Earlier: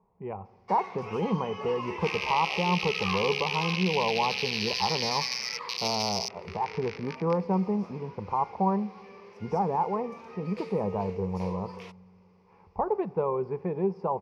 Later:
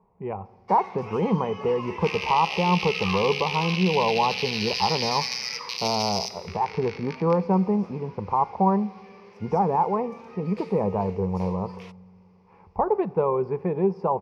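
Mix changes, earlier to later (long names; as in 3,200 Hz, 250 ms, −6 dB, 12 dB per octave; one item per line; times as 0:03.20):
speech +5.0 dB
second sound: send on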